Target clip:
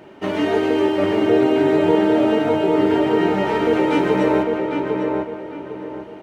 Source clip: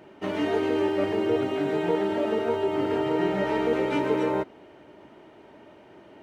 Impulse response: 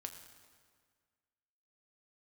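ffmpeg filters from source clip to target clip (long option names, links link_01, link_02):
-filter_complex "[0:a]asplit=2[link_01][link_02];[link_02]adelay=802,lowpass=frequency=2200:poles=1,volume=-3.5dB,asplit=2[link_03][link_04];[link_04]adelay=802,lowpass=frequency=2200:poles=1,volume=0.34,asplit=2[link_05][link_06];[link_06]adelay=802,lowpass=frequency=2200:poles=1,volume=0.34,asplit=2[link_07][link_08];[link_08]adelay=802,lowpass=frequency=2200:poles=1,volume=0.34[link_09];[link_01][link_03][link_05][link_07][link_09]amix=inputs=5:normalize=0,asplit=2[link_10][link_11];[1:a]atrim=start_sample=2205,adelay=147[link_12];[link_11][link_12]afir=irnorm=-1:irlink=0,volume=-8.5dB[link_13];[link_10][link_13]amix=inputs=2:normalize=0,volume=6.5dB"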